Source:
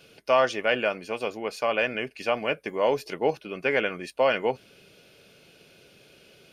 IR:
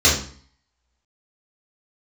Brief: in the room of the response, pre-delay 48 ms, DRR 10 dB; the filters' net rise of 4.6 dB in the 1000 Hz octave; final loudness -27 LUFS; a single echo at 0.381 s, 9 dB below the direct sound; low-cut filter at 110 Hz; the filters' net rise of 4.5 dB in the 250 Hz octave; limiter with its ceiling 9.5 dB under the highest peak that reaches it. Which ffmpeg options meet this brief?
-filter_complex "[0:a]highpass=110,equalizer=f=250:t=o:g=5.5,equalizer=f=1k:t=o:g=5.5,alimiter=limit=-16.5dB:level=0:latency=1,aecho=1:1:381:0.355,asplit=2[a][b];[1:a]atrim=start_sample=2205,adelay=48[c];[b][c]afir=irnorm=-1:irlink=0,volume=-31dB[d];[a][d]amix=inputs=2:normalize=0,volume=1.5dB"

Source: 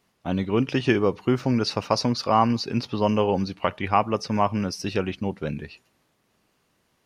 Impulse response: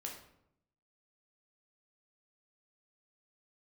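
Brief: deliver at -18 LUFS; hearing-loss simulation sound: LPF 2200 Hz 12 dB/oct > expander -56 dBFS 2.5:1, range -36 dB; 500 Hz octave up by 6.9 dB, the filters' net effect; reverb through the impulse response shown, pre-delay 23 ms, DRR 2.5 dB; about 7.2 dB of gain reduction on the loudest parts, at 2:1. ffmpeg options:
-filter_complex "[0:a]equalizer=f=500:t=o:g=8.5,acompressor=threshold=-24dB:ratio=2,asplit=2[a][b];[1:a]atrim=start_sample=2205,adelay=23[c];[b][c]afir=irnorm=-1:irlink=0,volume=-0.5dB[d];[a][d]amix=inputs=2:normalize=0,lowpass=2.2k,agate=range=-36dB:threshold=-56dB:ratio=2.5,volume=6.5dB"

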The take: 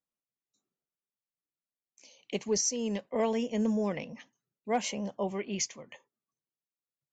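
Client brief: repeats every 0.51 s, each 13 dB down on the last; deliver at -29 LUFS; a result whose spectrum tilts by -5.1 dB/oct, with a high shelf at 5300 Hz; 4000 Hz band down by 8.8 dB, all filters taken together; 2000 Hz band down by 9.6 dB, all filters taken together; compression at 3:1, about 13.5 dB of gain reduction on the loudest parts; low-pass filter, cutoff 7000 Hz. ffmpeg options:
-af "lowpass=7k,equalizer=f=2k:t=o:g=-9,equalizer=f=4k:t=o:g=-5,highshelf=f=5.3k:g=-7.5,acompressor=threshold=-44dB:ratio=3,aecho=1:1:510|1020|1530:0.224|0.0493|0.0108,volume=16dB"

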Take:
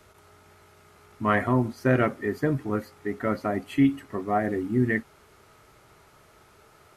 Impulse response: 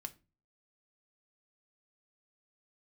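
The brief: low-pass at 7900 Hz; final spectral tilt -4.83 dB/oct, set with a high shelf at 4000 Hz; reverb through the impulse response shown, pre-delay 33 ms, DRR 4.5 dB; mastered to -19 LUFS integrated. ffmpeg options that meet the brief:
-filter_complex "[0:a]lowpass=7.9k,highshelf=f=4k:g=-4,asplit=2[a][b];[1:a]atrim=start_sample=2205,adelay=33[c];[b][c]afir=irnorm=-1:irlink=0,volume=-1dB[d];[a][d]amix=inputs=2:normalize=0,volume=5dB"

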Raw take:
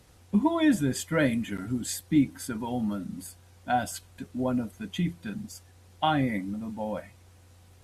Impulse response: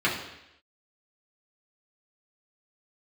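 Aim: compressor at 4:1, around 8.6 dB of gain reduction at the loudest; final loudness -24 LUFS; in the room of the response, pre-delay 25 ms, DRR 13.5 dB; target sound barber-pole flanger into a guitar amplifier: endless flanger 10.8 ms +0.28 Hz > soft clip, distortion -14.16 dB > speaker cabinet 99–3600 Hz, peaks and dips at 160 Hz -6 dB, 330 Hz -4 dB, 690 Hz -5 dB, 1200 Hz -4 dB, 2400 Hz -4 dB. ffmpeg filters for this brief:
-filter_complex "[0:a]acompressor=threshold=-28dB:ratio=4,asplit=2[a][b];[1:a]atrim=start_sample=2205,adelay=25[c];[b][c]afir=irnorm=-1:irlink=0,volume=-28dB[d];[a][d]amix=inputs=2:normalize=0,asplit=2[e][f];[f]adelay=10.8,afreqshift=0.28[g];[e][g]amix=inputs=2:normalize=1,asoftclip=threshold=-30dB,highpass=99,equalizer=f=160:t=q:w=4:g=-6,equalizer=f=330:t=q:w=4:g=-4,equalizer=f=690:t=q:w=4:g=-5,equalizer=f=1.2k:t=q:w=4:g=-4,equalizer=f=2.4k:t=q:w=4:g=-4,lowpass=f=3.6k:w=0.5412,lowpass=f=3.6k:w=1.3066,volume=17.5dB"

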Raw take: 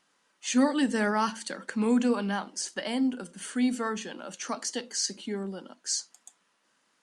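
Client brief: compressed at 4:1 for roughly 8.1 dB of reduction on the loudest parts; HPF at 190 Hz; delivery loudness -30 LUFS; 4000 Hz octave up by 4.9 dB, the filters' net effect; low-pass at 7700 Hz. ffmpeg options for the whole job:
-af "highpass=190,lowpass=7.7k,equalizer=f=4k:t=o:g=7,acompressor=threshold=-30dB:ratio=4,volume=4dB"

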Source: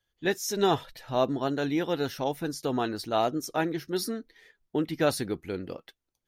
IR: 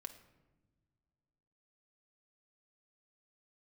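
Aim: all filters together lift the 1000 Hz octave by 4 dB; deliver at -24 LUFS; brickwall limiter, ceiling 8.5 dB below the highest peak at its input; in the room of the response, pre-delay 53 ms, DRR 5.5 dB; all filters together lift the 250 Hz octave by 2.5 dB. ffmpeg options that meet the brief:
-filter_complex "[0:a]equalizer=f=250:t=o:g=3,equalizer=f=1k:t=o:g=5.5,alimiter=limit=-17dB:level=0:latency=1,asplit=2[a][b];[1:a]atrim=start_sample=2205,adelay=53[c];[b][c]afir=irnorm=-1:irlink=0,volume=-1dB[d];[a][d]amix=inputs=2:normalize=0,volume=5dB"

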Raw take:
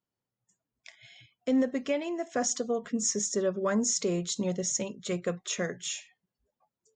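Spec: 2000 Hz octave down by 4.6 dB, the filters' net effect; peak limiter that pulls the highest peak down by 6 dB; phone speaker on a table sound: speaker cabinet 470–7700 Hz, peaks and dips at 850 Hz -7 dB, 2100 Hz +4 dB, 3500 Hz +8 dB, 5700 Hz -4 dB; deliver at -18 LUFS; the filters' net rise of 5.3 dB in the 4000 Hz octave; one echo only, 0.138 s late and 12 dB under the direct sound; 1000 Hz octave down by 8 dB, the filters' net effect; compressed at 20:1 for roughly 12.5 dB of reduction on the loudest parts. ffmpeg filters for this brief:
-af "equalizer=f=1k:t=o:g=-7.5,equalizer=f=2k:t=o:g=-8,equalizer=f=4k:t=o:g=6,acompressor=threshold=-35dB:ratio=20,alimiter=level_in=7dB:limit=-24dB:level=0:latency=1,volume=-7dB,highpass=f=470:w=0.5412,highpass=f=470:w=1.3066,equalizer=f=850:t=q:w=4:g=-7,equalizer=f=2.1k:t=q:w=4:g=4,equalizer=f=3.5k:t=q:w=4:g=8,equalizer=f=5.7k:t=q:w=4:g=-4,lowpass=f=7.7k:w=0.5412,lowpass=f=7.7k:w=1.3066,aecho=1:1:138:0.251,volume=25.5dB"

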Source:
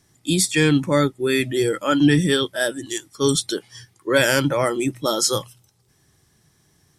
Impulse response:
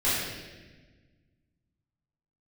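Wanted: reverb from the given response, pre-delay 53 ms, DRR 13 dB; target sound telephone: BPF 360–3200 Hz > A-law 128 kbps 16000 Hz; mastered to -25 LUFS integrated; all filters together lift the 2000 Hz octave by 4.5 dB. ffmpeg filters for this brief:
-filter_complex "[0:a]equalizer=f=2k:t=o:g=6.5,asplit=2[a][b];[1:a]atrim=start_sample=2205,adelay=53[c];[b][c]afir=irnorm=-1:irlink=0,volume=-26dB[d];[a][d]amix=inputs=2:normalize=0,highpass=360,lowpass=3.2k,volume=-4dB" -ar 16000 -c:a pcm_alaw

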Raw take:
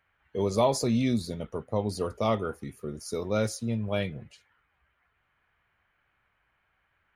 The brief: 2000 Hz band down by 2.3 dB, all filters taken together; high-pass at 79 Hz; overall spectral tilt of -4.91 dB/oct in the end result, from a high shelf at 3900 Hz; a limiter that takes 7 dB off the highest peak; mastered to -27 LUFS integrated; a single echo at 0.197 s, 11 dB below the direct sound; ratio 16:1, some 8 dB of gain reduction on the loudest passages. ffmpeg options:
-af "highpass=79,equalizer=f=2k:t=o:g=-4.5,highshelf=f=3.9k:g=6,acompressor=threshold=-26dB:ratio=16,alimiter=level_in=0.5dB:limit=-24dB:level=0:latency=1,volume=-0.5dB,aecho=1:1:197:0.282,volume=8dB"

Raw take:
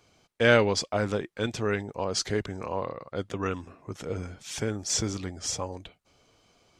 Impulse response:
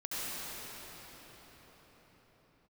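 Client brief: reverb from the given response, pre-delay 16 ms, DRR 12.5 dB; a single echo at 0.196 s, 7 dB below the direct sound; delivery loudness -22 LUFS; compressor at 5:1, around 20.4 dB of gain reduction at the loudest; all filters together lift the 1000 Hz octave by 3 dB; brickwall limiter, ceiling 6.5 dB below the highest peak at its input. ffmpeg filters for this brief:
-filter_complex "[0:a]equalizer=f=1k:t=o:g=4,acompressor=threshold=-37dB:ratio=5,alimiter=level_in=4.5dB:limit=-24dB:level=0:latency=1,volume=-4.5dB,aecho=1:1:196:0.447,asplit=2[a][b];[1:a]atrim=start_sample=2205,adelay=16[c];[b][c]afir=irnorm=-1:irlink=0,volume=-18.5dB[d];[a][d]amix=inputs=2:normalize=0,volume=19dB"

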